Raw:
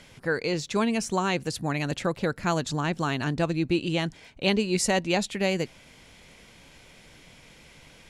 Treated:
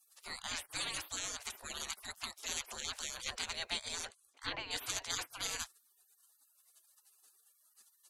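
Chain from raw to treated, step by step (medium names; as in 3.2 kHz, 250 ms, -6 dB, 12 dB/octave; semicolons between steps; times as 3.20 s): 4.05–4.71 s: low-pass that closes with the level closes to 1.6 kHz, closed at -21 dBFS; spectral gate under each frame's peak -30 dB weak; trim +7.5 dB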